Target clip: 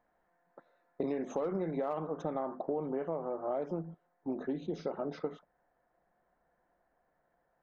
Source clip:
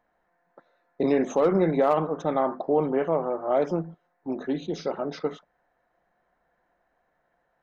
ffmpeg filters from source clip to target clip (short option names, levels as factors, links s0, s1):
-af "asetnsamples=n=441:p=0,asendcmd='2.25 highshelf g -12',highshelf=f=2200:g=-6,acompressor=threshold=0.0355:ratio=6,volume=0.75"